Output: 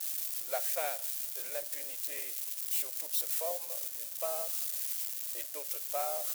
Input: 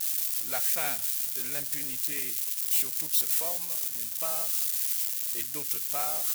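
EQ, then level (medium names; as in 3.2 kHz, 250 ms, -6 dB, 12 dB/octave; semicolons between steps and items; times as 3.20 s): resonant high-pass 560 Hz, resonance Q 4.9; -7.0 dB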